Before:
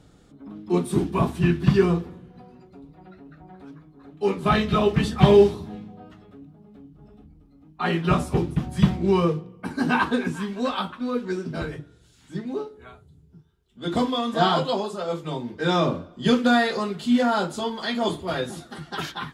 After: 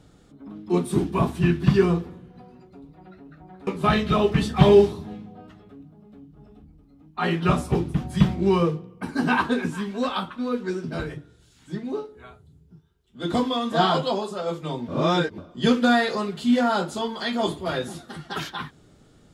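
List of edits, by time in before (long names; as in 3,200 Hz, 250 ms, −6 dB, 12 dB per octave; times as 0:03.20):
0:03.67–0:04.29: remove
0:15.50–0:16.00: reverse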